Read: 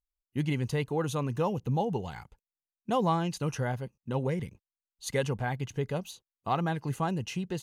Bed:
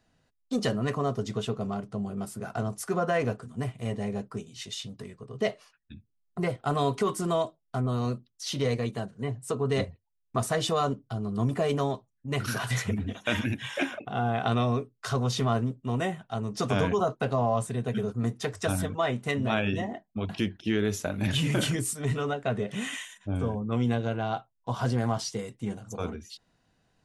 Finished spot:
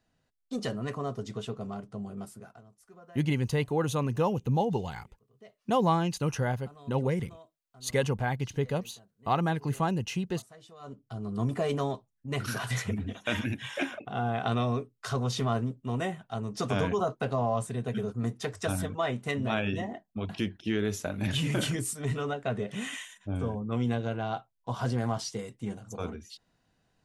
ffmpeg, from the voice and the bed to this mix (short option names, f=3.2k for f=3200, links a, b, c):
-filter_complex "[0:a]adelay=2800,volume=2dB[a];[1:a]volume=17.5dB,afade=t=out:st=2.21:d=0.4:silence=0.1,afade=t=in:st=10.79:d=0.54:silence=0.0707946[b];[a][b]amix=inputs=2:normalize=0"